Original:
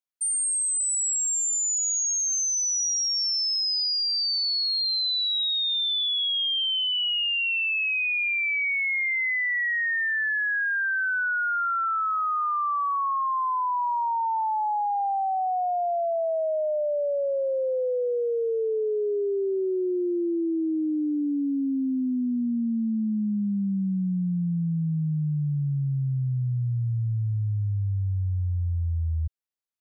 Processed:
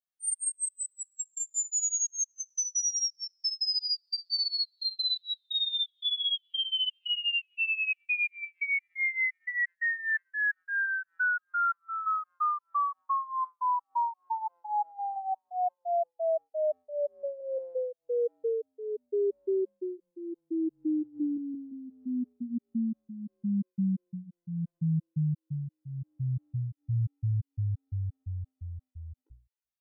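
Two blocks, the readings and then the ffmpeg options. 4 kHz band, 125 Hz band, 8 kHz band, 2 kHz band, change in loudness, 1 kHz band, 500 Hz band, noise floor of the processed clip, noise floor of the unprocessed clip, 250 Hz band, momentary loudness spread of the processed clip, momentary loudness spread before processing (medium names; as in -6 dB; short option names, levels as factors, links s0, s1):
-6.5 dB, -7.0 dB, -7.0 dB, -5.5 dB, -6.0 dB, -6.0 dB, -6.0 dB, under -85 dBFS, -26 dBFS, -7.5 dB, 11 LU, 5 LU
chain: -af "flanger=delay=17:depth=4.1:speed=0.11,bandreject=f=60:t=h:w=6,bandreject=f=120:t=h:w=6,bandreject=f=180:t=h:w=6,bandreject=f=240:t=h:w=6,bandreject=f=300:t=h:w=6,bandreject=f=360:t=h:w=6,afftfilt=real='re*gt(sin(2*PI*2.9*pts/sr)*(1-2*mod(floor(b*sr/1024/260),2)),0)':imag='im*gt(sin(2*PI*2.9*pts/sr)*(1-2*mod(floor(b*sr/1024/260),2)),0)':win_size=1024:overlap=0.75"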